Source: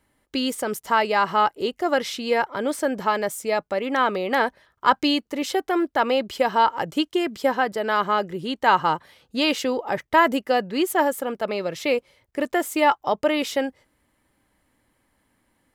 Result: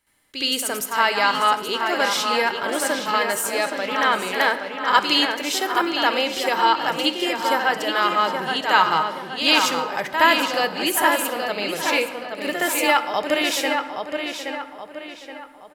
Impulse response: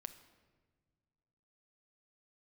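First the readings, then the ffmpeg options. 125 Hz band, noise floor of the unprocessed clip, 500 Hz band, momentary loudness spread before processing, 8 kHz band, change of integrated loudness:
-2.5 dB, -70 dBFS, -1.0 dB, 7 LU, +9.0 dB, +2.5 dB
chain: -filter_complex "[0:a]tiltshelf=f=1200:g=-7,asplit=2[s0][s1];[s1]adelay=823,lowpass=f=4100:p=1,volume=0.531,asplit=2[s2][s3];[s3]adelay=823,lowpass=f=4100:p=1,volume=0.42,asplit=2[s4][s5];[s5]adelay=823,lowpass=f=4100:p=1,volume=0.42,asplit=2[s6][s7];[s7]adelay=823,lowpass=f=4100:p=1,volume=0.42,asplit=2[s8][s9];[s9]adelay=823,lowpass=f=4100:p=1,volume=0.42[s10];[s0][s2][s4][s6][s8][s10]amix=inputs=6:normalize=0,asplit=2[s11][s12];[1:a]atrim=start_sample=2205,adelay=68[s13];[s12][s13]afir=irnorm=-1:irlink=0,volume=4.47[s14];[s11][s14]amix=inputs=2:normalize=0,volume=0.447"

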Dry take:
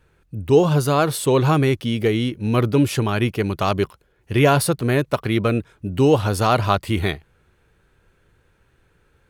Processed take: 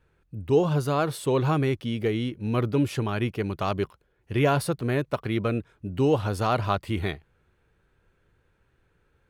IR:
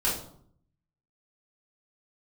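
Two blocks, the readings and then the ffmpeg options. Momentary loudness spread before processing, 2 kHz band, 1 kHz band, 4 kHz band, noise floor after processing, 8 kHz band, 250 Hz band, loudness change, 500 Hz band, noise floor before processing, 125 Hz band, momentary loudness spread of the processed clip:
8 LU, -7.5 dB, -7.0 dB, -8.5 dB, -69 dBFS, -11.5 dB, -6.5 dB, -6.5 dB, -6.5 dB, -62 dBFS, -6.5 dB, 8 LU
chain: -af "highshelf=f=4700:g=-6.5,volume=0.473"

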